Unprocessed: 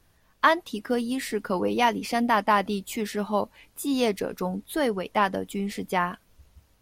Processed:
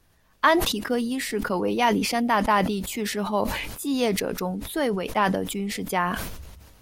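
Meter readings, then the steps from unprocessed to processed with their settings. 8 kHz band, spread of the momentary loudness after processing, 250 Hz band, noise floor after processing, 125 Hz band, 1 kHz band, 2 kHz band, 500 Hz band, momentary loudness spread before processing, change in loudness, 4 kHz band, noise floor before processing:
+6.0 dB, 8 LU, +2.5 dB, -61 dBFS, +4.5 dB, +0.5 dB, +1.5 dB, +1.5 dB, 9 LU, +1.5 dB, +4.0 dB, -64 dBFS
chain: sustainer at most 40 dB/s

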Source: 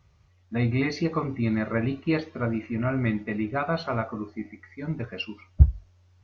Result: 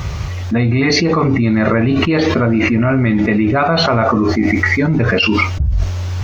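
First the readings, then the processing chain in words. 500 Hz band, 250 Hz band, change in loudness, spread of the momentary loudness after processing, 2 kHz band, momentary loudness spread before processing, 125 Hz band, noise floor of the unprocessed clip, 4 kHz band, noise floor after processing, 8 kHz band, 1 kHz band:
+14.5 dB, +14.0 dB, +13.0 dB, 5 LU, +17.0 dB, 14 LU, +11.0 dB, -61 dBFS, +20.5 dB, -22 dBFS, n/a, +15.0 dB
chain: maximiser +7 dB; fast leveller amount 100%; gain -8 dB

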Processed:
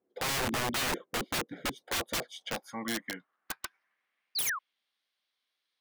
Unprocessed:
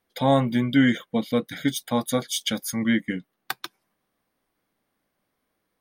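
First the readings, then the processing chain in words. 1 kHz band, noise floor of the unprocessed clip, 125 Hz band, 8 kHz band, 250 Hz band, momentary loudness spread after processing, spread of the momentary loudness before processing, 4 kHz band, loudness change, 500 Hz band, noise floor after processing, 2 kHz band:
-6.5 dB, -78 dBFS, -15.0 dB, -1.5 dB, -17.5 dB, 11 LU, 14 LU, -3.5 dB, -9.0 dB, -12.0 dB, -84 dBFS, -4.0 dB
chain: painted sound fall, 4.35–4.59, 1000–5000 Hz -27 dBFS; band-pass sweep 370 Hz -> 3700 Hz, 1.44–4.9; wrapped overs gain 31 dB; gain +5 dB

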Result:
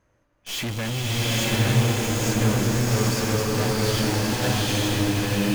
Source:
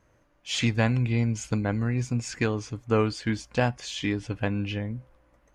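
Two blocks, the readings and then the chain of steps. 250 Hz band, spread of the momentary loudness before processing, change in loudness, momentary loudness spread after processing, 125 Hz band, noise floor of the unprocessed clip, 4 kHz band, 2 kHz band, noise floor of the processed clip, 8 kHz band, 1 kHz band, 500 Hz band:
+4.0 dB, 8 LU, +5.0 dB, 6 LU, +5.0 dB, -64 dBFS, +9.5 dB, +5.0 dB, -67 dBFS, +11.5 dB, +5.5 dB, +4.0 dB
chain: tube stage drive 36 dB, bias 0.65; swelling echo 94 ms, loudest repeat 5, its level -17.5 dB; in parallel at -6.5 dB: companded quantiser 2-bit; on the sum: bloom reverb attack 0.89 s, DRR -7 dB; gain +1 dB

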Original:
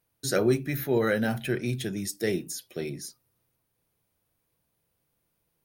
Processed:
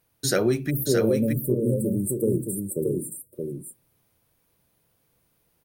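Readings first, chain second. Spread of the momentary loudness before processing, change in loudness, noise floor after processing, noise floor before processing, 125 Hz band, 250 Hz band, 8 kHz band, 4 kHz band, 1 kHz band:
12 LU, +3.5 dB, -70 dBFS, -77 dBFS, +5.5 dB, +5.0 dB, +5.5 dB, +2.0 dB, n/a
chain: spectral delete 0.7–3.33, 610–7300 Hz; compressor 2.5:1, threshold -27 dBFS, peak gain reduction 7 dB; echo 0.623 s -4.5 dB; gain +6.5 dB

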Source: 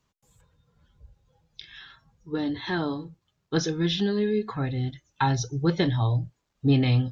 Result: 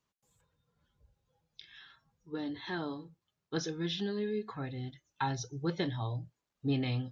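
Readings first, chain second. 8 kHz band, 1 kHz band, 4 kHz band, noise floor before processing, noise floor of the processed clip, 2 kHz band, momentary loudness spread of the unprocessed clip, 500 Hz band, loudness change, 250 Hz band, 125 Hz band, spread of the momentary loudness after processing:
n/a, -8.5 dB, -8.5 dB, -76 dBFS, under -85 dBFS, -8.5 dB, 17 LU, -9.0 dB, -10.0 dB, -10.0 dB, -12.0 dB, 19 LU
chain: low shelf 100 Hz -10 dB; gain -8.5 dB

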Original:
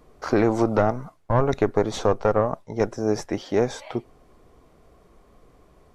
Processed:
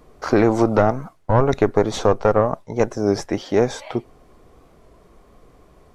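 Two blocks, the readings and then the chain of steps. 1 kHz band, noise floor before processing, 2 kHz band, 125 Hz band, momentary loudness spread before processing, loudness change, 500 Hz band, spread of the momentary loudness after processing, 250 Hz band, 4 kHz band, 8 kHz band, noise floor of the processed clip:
+4.0 dB, -57 dBFS, +4.0 dB, +4.0 dB, 7 LU, +4.0 dB, +4.0 dB, 7 LU, +4.0 dB, +4.0 dB, +3.5 dB, -53 dBFS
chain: record warp 33 1/3 rpm, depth 100 cents; gain +4 dB

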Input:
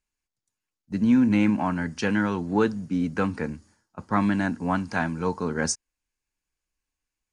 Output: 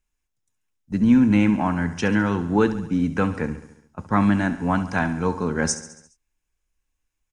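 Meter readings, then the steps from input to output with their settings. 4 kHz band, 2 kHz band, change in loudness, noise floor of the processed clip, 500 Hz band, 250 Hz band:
+2.0 dB, +3.0 dB, +3.5 dB, -78 dBFS, +3.0 dB, +3.5 dB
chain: low shelf 79 Hz +9.5 dB; notch 4500 Hz, Q 6.1; on a send: feedback echo 69 ms, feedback 59%, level -13.5 dB; on the sum: gain +2.5 dB

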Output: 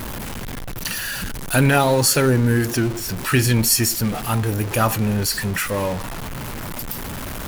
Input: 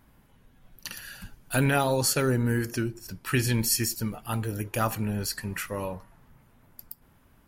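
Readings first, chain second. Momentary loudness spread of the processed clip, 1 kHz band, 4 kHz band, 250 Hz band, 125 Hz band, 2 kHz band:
15 LU, +8.5 dB, +9.5 dB, +8.5 dB, +9.0 dB, +9.0 dB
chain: zero-crossing step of -30.5 dBFS; gain +6.5 dB

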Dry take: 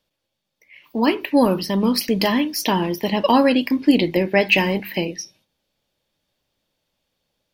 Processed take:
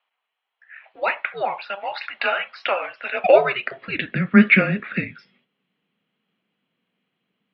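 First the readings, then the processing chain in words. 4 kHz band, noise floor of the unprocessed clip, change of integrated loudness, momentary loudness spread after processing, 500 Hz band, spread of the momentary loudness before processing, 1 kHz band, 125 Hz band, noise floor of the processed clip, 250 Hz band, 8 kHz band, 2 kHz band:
-8.5 dB, -78 dBFS, -1.5 dB, 13 LU, -1.0 dB, 10 LU, -2.0 dB, +0.5 dB, -81 dBFS, -4.5 dB, under -35 dB, +3.0 dB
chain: mistuned SSB -390 Hz 540–3500 Hz; high-pass sweep 850 Hz -> 190 Hz, 3.08–4.25; gain +2 dB

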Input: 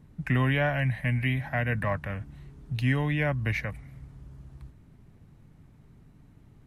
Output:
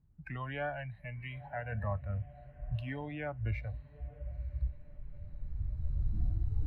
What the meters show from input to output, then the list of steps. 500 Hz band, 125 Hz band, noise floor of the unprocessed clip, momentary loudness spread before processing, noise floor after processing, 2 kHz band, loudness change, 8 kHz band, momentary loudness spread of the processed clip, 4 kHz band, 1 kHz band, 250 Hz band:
-9.0 dB, -8.5 dB, -56 dBFS, 20 LU, -57 dBFS, -13.5 dB, -11.5 dB, n/a, 12 LU, -14.5 dB, -8.0 dB, -14.5 dB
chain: recorder AGC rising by 9.6 dB/s; ten-band EQ 125 Hz -3 dB, 250 Hz -12 dB, 500 Hz -10 dB, 1000 Hz -6 dB, 2000 Hz -11 dB, 4000 Hz -9 dB; diffused feedback echo 0.957 s, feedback 50%, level -13 dB; spectral noise reduction 15 dB; air absorption 430 m; gain +5 dB

